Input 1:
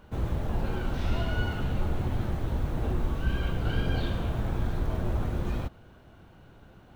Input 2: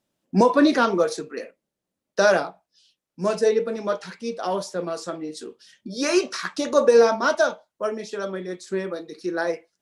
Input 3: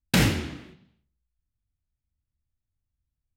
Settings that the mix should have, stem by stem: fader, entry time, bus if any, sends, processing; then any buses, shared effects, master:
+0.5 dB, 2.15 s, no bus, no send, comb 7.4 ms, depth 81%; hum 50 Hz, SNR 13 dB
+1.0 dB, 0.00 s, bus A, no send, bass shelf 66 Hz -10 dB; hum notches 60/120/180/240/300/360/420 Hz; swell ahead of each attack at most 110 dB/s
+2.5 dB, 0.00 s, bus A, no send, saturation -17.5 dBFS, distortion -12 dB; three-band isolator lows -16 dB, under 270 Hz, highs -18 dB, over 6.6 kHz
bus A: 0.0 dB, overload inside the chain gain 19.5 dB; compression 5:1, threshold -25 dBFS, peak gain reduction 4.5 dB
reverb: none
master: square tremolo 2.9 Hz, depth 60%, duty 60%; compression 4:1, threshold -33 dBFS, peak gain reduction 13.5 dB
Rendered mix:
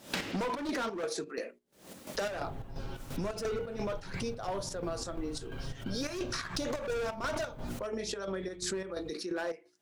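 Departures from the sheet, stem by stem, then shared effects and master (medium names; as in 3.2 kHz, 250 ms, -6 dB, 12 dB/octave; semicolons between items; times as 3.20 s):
stem 1 +0.5 dB -> -11.0 dB; stem 3: missing saturation -17.5 dBFS, distortion -12 dB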